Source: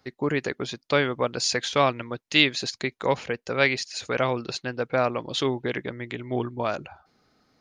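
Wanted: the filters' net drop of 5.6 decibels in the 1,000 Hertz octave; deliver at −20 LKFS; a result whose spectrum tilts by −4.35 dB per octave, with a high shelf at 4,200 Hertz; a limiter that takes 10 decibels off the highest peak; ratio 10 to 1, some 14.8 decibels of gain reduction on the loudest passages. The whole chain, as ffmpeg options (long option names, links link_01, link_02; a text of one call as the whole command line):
ffmpeg -i in.wav -af "equalizer=frequency=1000:width_type=o:gain=-7,highshelf=frequency=4200:gain=-6.5,acompressor=threshold=-33dB:ratio=10,volume=20.5dB,alimiter=limit=-8dB:level=0:latency=1" out.wav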